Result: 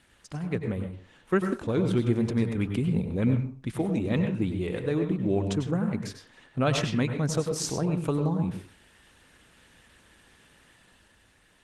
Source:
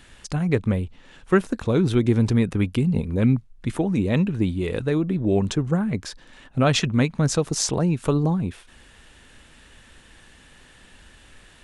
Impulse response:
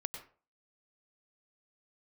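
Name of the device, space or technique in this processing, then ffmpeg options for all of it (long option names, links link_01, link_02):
far-field microphone of a smart speaker: -filter_complex "[1:a]atrim=start_sample=2205[link_01];[0:a][link_01]afir=irnorm=-1:irlink=0,highpass=frequency=86:poles=1,dynaudnorm=framelen=160:gausssize=11:maxgain=4dB,volume=-7.5dB" -ar 48000 -c:a libopus -b:a 20k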